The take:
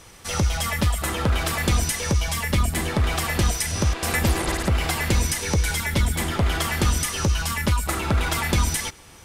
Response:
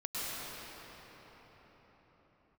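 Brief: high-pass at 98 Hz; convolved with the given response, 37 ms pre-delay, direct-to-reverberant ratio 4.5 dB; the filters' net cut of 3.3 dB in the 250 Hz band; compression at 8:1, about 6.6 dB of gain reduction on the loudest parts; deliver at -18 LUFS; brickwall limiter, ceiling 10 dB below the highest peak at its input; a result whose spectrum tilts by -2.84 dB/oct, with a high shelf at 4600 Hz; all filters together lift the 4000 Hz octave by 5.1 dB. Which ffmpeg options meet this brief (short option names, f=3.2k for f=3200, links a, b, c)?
-filter_complex "[0:a]highpass=98,equalizer=f=250:t=o:g=-4.5,equalizer=f=4k:t=o:g=4.5,highshelf=f=4.6k:g=4,acompressor=threshold=-25dB:ratio=8,alimiter=limit=-20.5dB:level=0:latency=1,asplit=2[a][b];[1:a]atrim=start_sample=2205,adelay=37[c];[b][c]afir=irnorm=-1:irlink=0,volume=-10dB[d];[a][d]amix=inputs=2:normalize=0,volume=10.5dB"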